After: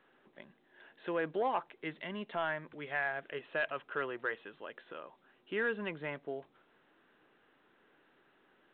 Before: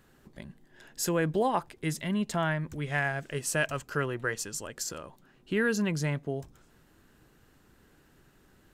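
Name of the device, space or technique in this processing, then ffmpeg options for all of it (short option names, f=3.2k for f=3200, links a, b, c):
telephone: -af "highpass=380,lowpass=3.4k,asoftclip=type=tanh:threshold=-19dB,volume=-3dB" -ar 8000 -c:a pcm_mulaw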